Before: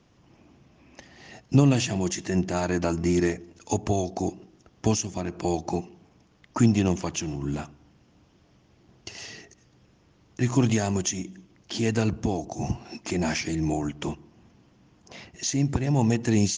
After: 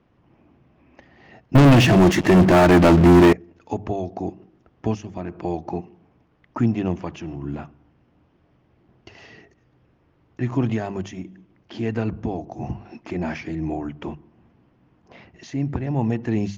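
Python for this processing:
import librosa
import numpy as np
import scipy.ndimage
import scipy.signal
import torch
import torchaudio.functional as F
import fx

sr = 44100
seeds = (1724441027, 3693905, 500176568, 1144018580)

y = scipy.signal.sosfilt(scipy.signal.butter(2, 2200.0, 'lowpass', fs=sr, output='sos'), x)
y = fx.hum_notches(y, sr, base_hz=50, count=4)
y = fx.leveller(y, sr, passes=5, at=(1.55, 3.33))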